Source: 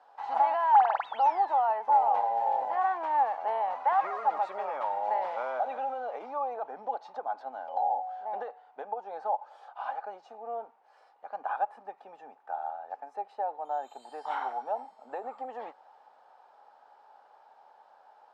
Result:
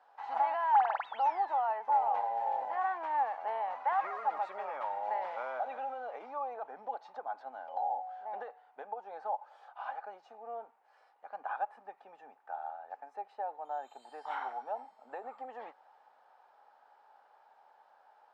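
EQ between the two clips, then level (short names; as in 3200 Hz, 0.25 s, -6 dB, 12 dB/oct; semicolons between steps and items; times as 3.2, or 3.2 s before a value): bell 1900 Hz +5 dB 1.4 oct; -6.5 dB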